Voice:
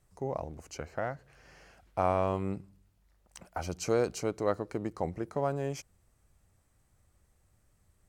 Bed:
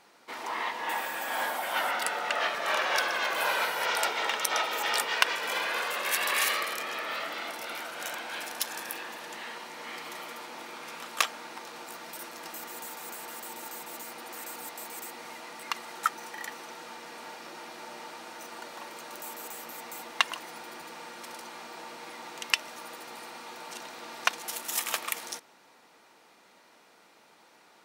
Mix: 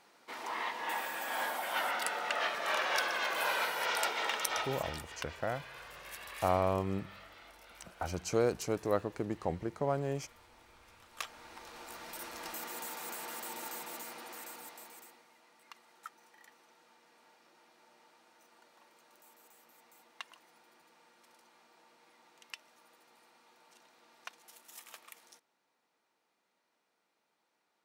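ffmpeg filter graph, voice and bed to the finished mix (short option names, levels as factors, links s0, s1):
-filter_complex "[0:a]adelay=4450,volume=0.841[s0];[1:a]volume=4.47,afade=t=out:st=4.4:d=0.6:silence=0.188365,afade=t=in:st=11.07:d=1.39:silence=0.133352,afade=t=out:st=13.69:d=1.57:silence=0.105925[s1];[s0][s1]amix=inputs=2:normalize=0"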